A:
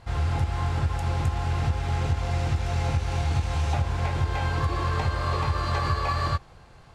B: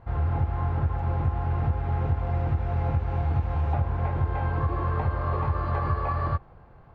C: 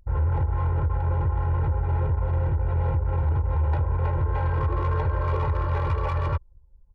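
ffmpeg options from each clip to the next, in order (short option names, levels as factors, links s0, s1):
-af "lowpass=1300"
-af "asoftclip=type=hard:threshold=0.0708,anlmdn=2.51,aecho=1:1:2.1:0.88"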